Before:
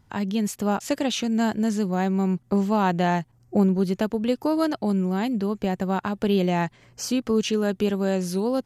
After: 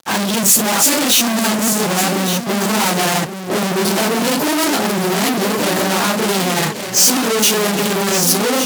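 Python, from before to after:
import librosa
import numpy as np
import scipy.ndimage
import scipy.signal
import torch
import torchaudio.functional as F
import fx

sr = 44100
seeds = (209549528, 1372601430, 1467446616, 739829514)

p1 = fx.phase_scramble(x, sr, seeds[0], window_ms=100)
p2 = fx.rider(p1, sr, range_db=3, speed_s=0.5)
p3 = p1 + (p2 * 10.0 ** (-2.0 / 20.0))
p4 = fx.fuzz(p3, sr, gain_db=38.0, gate_db=-47.0)
p5 = scipy.signal.sosfilt(scipy.signal.butter(2, 180.0, 'highpass', fs=sr, output='sos'), p4)
p6 = fx.high_shelf(p5, sr, hz=4800.0, db=11.5)
p7 = p6 + fx.echo_single(p6, sr, ms=1164, db=-9.0, dry=0)
y = p7 * 10.0 ** (-3.0 / 20.0)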